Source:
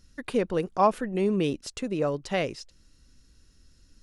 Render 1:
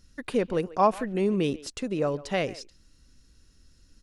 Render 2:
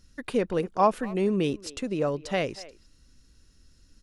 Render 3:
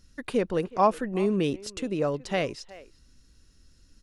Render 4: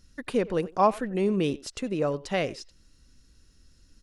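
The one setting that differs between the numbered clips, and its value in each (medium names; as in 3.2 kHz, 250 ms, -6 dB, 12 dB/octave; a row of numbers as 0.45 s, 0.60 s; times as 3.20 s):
speakerphone echo, time: 140 ms, 240 ms, 370 ms, 90 ms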